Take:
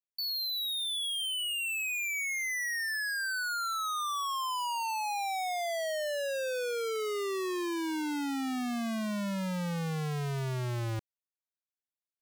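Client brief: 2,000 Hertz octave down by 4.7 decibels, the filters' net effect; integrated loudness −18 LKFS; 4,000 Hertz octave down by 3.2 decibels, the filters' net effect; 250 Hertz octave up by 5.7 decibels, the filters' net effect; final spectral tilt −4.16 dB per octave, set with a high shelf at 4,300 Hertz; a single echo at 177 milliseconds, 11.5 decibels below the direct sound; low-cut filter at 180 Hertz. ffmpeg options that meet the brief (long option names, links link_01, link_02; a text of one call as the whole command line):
ffmpeg -i in.wav -af "highpass=180,equalizer=frequency=250:width_type=o:gain=9,equalizer=frequency=2000:width_type=o:gain=-6,equalizer=frequency=4000:width_type=o:gain=-4,highshelf=frequency=4300:gain=4,aecho=1:1:177:0.266,volume=13.5dB" out.wav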